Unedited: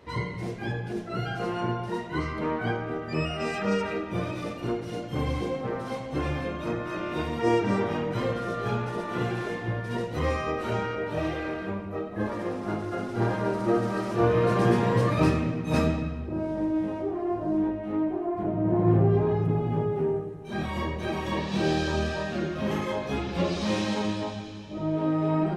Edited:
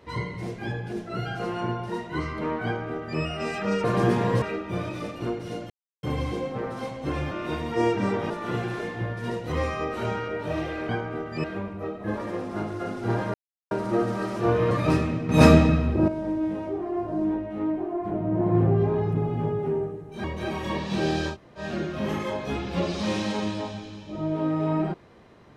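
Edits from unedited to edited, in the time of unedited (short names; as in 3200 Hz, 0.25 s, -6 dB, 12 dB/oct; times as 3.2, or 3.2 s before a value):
2.65–3.2 copy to 11.56
5.12 insert silence 0.33 s
6.4–6.98 cut
7.97–8.97 cut
13.46 insert silence 0.37 s
14.46–15.04 move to 3.84
15.62–16.41 gain +10 dB
20.57–20.86 cut
21.94–22.22 room tone, crossfade 0.10 s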